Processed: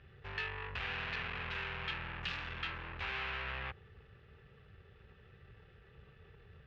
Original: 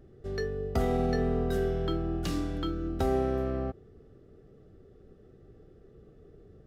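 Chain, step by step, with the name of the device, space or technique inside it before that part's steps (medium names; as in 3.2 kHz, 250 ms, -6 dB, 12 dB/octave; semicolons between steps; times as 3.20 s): scooped metal amplifier (valve stage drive 42 dB, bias 0.5; cabinet simulation 79–3500 Hz, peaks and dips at 670 Hz -8 dB, 1.7 kHz +5 dB, 2.6 kHz +8 dB; amplifier tone stack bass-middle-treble 10-0-10); trim +14.5 dB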